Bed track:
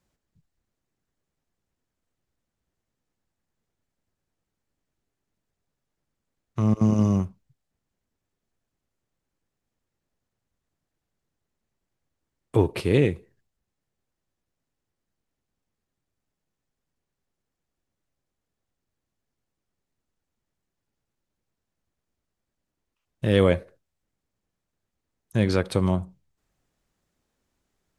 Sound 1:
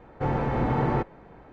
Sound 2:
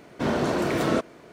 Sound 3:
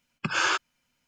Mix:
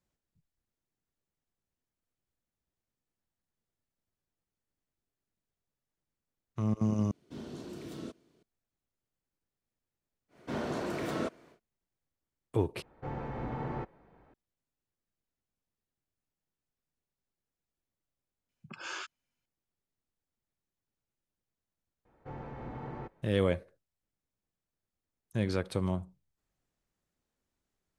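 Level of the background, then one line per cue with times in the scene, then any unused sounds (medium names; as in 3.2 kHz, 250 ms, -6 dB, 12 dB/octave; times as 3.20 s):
bed track -9 dB
7.11 s: replace with 2 -17 dB + high-order bell 1.1 kHz -10 dB 2.5 oct
10.28 s: add 2 -10.5 dB, fades 0.10 s
12.82 s: replace with 1 -12.5 dB
18.39 s: add 3 -14.5 dB + three bands offset in time lows, mids, highs 70/100 ms, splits 150/1200 Hz
22.05 s: add 1 -17.5 dB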